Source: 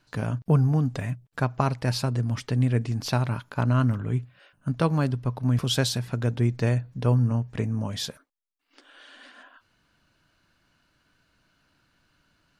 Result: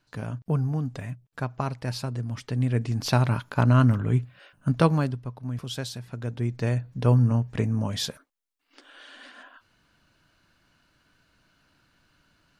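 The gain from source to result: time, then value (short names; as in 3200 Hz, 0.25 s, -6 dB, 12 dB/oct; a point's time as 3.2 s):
2.35 s -5 dB
3.22 s +3.5 dB
4.85 s +3.5 dB
5.33 s -9 dB
6 s -9 dB
7.1 s +2 dB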